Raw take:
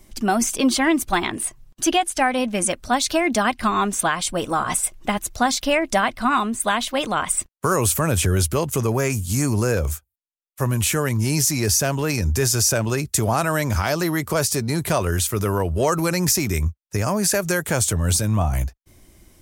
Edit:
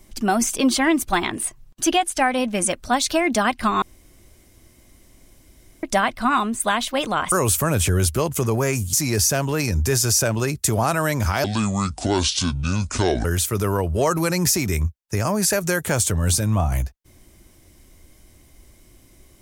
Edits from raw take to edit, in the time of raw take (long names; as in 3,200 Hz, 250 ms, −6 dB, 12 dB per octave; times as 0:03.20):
0:03.82–0:05.83: fill with room tone
0:07.32–0:07.69: remove
0:09.30–0:11.43: remove
0:13.94–0:15.06: play speed 62%